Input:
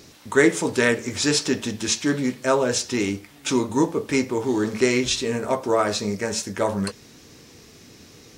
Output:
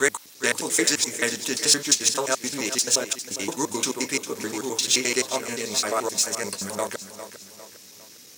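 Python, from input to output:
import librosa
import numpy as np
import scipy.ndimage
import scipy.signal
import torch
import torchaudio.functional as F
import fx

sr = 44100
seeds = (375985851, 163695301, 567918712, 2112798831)

p1 = fx.block_reorder(x, sr, ms=87.0, group=5)
p2 = scipy.signal.sosfilt(scipy.signal.butter(2, 84.0, 'highpass', fs=sr, output='sos'), p1)
p3 = fx.low_shelf(p2, sr, hz=110.0, db=8.0)
p4 = np.sign(p3) * np.maximum(np.abs(p3) - 10.0 ** (-30.5 / 20.0), 0.0)
p5 = p3 + (p4 * librosa.db_to_amplitude(-11.0))
p6 = fx.riaa(p5, sr, side='recording')
p7 = p6 + fx.echo_feedback(p6, sr, ms=403, feedback_pct=43, wet_db=-12.0, dry=0)
y = p7 * librosa.db_to_amplitude(-5.5)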